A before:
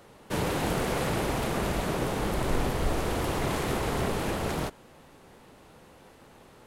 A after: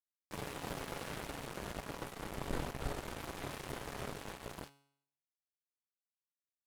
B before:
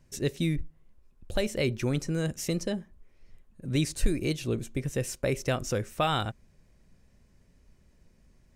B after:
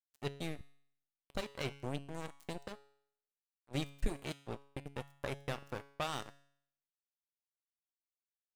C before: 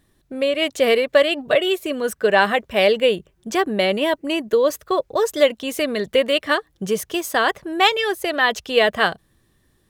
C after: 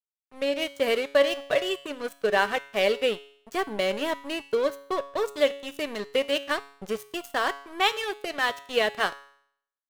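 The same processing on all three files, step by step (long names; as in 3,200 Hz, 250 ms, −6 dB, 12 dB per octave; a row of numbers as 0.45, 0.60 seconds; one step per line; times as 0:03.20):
dead-zone distortion −27.5 dBFS
tuned comb filter 140 Hz, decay 0.65 s, harmonics all, mix 60%
level +1 dB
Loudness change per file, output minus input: −14.0, −12.5, −7.5 LU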